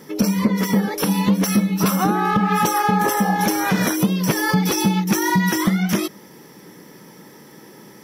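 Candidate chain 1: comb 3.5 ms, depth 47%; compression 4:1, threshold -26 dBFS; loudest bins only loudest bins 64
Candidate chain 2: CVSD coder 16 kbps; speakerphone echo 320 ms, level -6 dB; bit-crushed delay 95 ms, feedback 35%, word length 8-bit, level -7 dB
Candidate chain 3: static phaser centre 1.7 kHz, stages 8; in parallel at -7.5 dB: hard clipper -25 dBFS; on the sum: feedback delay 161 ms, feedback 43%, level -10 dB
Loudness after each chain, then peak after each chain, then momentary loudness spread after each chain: -28.0 LUFS, -20.0 LUFS, -20.5 LUFS; -15.0 dBFS, -6.5 dBFS, -7.5 dBFS; 17 LU, 3 LU, 4 LU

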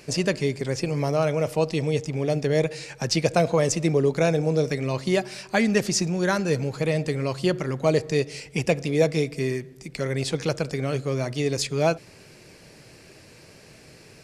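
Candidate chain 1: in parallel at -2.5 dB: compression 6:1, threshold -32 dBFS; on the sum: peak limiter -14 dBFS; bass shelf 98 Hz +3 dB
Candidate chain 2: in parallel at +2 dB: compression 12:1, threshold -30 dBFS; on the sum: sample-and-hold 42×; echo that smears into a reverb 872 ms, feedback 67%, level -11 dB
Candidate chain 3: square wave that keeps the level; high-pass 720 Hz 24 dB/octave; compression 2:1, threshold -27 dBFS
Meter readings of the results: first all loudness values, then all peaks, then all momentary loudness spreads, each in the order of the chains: -25.0 LUFS, -21.5 LUFS, -29.0 LUFS; -13.0 dBFS, -4.5 dBFS, -8.5 dBFS; 20 LU, 12 LU, 21 LU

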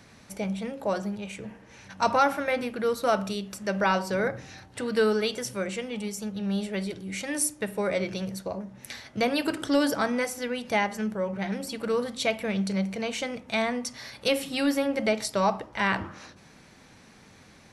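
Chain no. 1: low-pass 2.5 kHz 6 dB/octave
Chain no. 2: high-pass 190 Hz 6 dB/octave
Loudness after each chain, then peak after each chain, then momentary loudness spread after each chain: -29.0 LUFS, -29.0 LUFS; -11.0 dBFS, -10.5 dBFS; 11 LU, 11 LU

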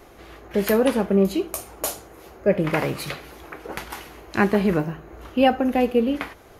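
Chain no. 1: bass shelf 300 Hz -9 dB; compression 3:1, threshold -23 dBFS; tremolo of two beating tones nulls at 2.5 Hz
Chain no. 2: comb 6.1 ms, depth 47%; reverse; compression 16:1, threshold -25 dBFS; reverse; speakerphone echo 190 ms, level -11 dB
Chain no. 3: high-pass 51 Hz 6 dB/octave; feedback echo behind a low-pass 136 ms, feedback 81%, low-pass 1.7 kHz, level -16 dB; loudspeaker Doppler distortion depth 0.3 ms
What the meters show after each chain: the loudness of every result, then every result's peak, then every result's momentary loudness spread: -32.5 LUFS, -31.5 LUFS, -22.5 LUFS; -9.5 dBFS, -12.0 dBFS, -6.0 dBFS; 14 LU, 9 LU, 15 LU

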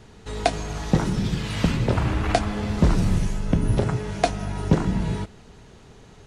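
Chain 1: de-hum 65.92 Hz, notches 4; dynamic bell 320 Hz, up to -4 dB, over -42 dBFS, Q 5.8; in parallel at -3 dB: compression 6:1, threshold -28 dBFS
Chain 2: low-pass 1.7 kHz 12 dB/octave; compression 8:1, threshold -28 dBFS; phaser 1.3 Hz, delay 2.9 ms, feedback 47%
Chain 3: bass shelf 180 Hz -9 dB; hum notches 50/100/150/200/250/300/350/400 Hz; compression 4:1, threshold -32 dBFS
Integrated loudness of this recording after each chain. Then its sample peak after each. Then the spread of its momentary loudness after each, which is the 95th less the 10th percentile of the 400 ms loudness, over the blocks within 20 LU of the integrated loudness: -23.0 LUFS, -32.0 LUFS, -36.0 LUFS; -3.5 dBFS, -13.0 dBFS, -14.0 dBFS; 6 LU, 11 LU, 11 LU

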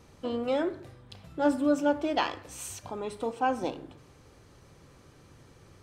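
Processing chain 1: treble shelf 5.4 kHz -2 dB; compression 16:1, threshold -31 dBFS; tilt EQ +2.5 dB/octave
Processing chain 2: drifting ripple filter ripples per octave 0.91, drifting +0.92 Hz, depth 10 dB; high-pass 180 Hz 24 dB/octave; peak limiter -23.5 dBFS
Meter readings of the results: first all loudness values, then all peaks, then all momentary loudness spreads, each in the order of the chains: -38.5 LUFS, -34.5 LUFS; -20.5 dBFS, -23.5 dBFS; 22 LU, 13 LU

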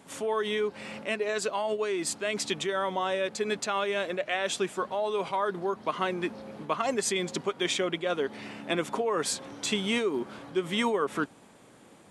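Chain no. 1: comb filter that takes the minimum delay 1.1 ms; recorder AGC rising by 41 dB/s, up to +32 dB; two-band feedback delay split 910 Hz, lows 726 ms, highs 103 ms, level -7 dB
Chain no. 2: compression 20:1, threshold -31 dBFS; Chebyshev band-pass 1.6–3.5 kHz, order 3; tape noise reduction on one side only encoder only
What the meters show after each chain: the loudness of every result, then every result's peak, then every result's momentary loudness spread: -30.5 LUFS, -43.5 LUFS; -10.5 dBFS, -22.5 dBFS; 3 LU, 12 LU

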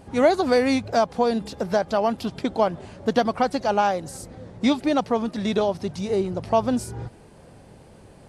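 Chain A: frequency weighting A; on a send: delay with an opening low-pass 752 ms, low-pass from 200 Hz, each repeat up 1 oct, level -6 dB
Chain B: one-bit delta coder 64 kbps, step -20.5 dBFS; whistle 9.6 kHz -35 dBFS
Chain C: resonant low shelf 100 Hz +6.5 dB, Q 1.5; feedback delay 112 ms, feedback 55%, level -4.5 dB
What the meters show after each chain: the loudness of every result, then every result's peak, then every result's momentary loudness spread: -26.0 LUFS, -22.5 LUFS, -22.0 LUFS; -7.0 dBFS, -7.0 dBFS, -5.0 dBFS; 13 LU, 6 LU, 9 LU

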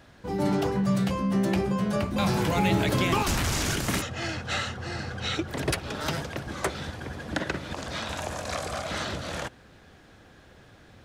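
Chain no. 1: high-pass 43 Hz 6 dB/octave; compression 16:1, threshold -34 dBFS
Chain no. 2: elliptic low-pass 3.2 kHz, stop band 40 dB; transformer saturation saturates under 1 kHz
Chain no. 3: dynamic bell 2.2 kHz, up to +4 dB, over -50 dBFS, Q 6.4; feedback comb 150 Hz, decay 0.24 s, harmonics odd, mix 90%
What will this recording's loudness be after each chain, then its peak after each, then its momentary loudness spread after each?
-38.0 LUFS, -33.0 LUFS, -40.0 LUFS; -20.0 dBFS, -14.0 dBFS, -24.0 dBFS; 16 LU, 8 LU, 10 LU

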